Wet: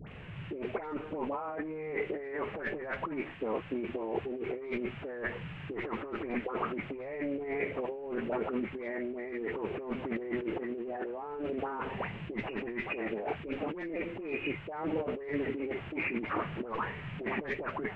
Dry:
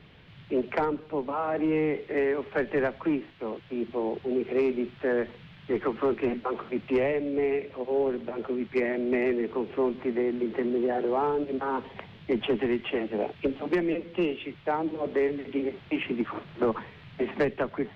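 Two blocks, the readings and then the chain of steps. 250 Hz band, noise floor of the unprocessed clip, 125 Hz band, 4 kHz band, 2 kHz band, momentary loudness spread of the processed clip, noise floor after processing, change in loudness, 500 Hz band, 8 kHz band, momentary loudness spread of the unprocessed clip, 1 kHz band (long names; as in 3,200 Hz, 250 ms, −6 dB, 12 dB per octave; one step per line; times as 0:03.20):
−8.0 dB, −50 dBFS, −2.5 dB, −7.0 dB, −2.5 dB, 4 LU, −44 dBFS, −7.5 dB, −9.0 dB, can't be measured, 6 LU, −5.5 dB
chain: hearing-aid frequency compression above 2,000 Hz 1.5 to 1
all-pass dispersion highs, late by 81 ms, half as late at 1,300 Hz
flanger 0.2 Hz, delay 1.3 ms, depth 4.8 ms, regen −75%
dynamic equaliser 210 Hz, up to −5 dB, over −41 dBFS, Q 0.78
compressor whose output falls as the input rises −41 dBFS, ratio −1
level +5 dB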